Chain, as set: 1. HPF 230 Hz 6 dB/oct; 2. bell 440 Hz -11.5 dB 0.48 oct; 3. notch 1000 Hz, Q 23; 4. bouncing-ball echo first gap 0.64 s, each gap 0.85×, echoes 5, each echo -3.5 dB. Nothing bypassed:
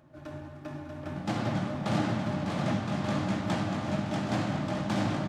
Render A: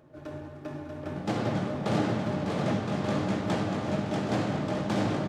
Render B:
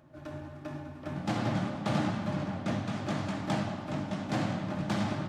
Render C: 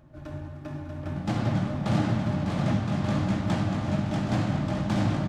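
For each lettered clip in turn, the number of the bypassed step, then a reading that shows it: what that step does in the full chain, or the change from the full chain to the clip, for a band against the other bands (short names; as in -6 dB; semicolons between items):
2, 500 Hz band +4.0 dB; 4, loudness change -2.5 LU; 1, crest factor change -2.5 dB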